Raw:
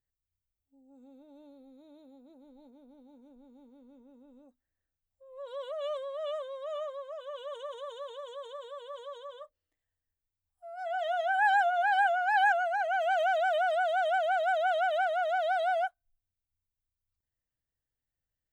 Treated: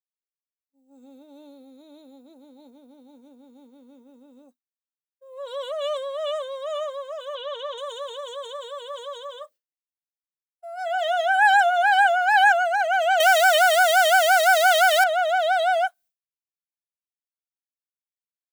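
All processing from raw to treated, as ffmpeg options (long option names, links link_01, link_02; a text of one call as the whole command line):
ffmpeg -i in.wav -filter_complex "[0:a]asettb=1/sr,asplit=3[link_01][link_02][link_03];[link_01]atrim=end=7.354[link_04];[link_02]atrim=start=7.35:end=7.78,asetpts=PTS-STARTPTS,afade=type=in:duration=0.004:curve=qsin,afade=type=out:start_time=0.426:duration=0.004:curve=qsin,lowpass=frequency=4300:width_type=q:width=1.8,acrossover=split=3200[link_05][link_06];[link_06]acompressor=threshold=-59dB:ratio=4:attack=1:release=60[link_07];[link_05][link_07]amix=inputs=2:normalize=0[link_08];[link_03]atrim=start=7.776[link_09];[link_04][link_08]acrossfade=duration=0.004:curve1=hsin:curve2=qsin[link_10];[link_10][link_09]acrossfade=duration=0.004:curve1=qsin:curve2=hsin,asettb=1/sr,asplit=3[link_11][link_12][link_13];[link_11]atrim=end=13.204[link_14];[link_12]atrim=start=13.2:end=15.04,asetpts=PTS-STARTPTS,afade=type=in:duration=0.004:curve=qsin,afade=type=out:start_time=1.836:duration=0.004:curve=qsin,aeval=exprs='val(0)+0.5*0.0133*sgn(val(0))':channel_layout=same,highpass=frequency=170:width_type=q:width=1.8,tiltshelf=frequency=700:gain=-7.5[link_15];[link_13]atrim=start=15.036[link_16];[link_14][link_15]acrossfade=duration=0.004:curve1=hsin:curve2=qsin[link_17];[link_17][link_16]acrossfade=duration=0.004:curve1=qsin:curve2=hsin,agate=range=-33dB:threshold=-54dB:ratio=3:detection=peak,highpass=frequency=150:width=0.5412,highpass=frequency=150:width=1.3066,highshelf=frequency=2800:gain=10,volume=7dB" out.wav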